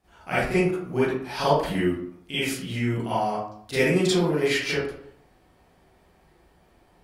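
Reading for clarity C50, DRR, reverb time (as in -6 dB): -2.0 dB, -12.5 dB, 0.60 s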